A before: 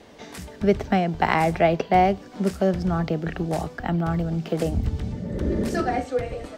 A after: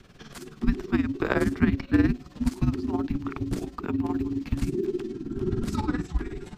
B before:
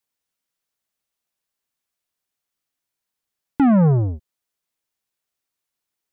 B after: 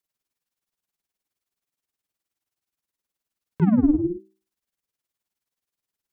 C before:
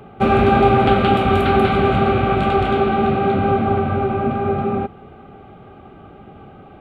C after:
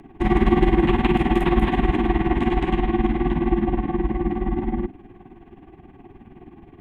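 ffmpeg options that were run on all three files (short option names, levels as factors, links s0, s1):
-af "tremolo=f=19:d=0.74,bandreject=f=60:t=h:w=6,bandreject=f=120:t=h:w=6,bandreject=f=180:t=h:w=6,bandreject=f=240:t=h:w=6,afreqshift=-440"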